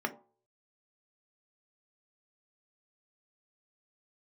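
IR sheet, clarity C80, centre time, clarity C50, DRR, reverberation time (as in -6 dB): 19.5 dB, 7 ms, 15.0 dB, 4.0 dB, 0.45 s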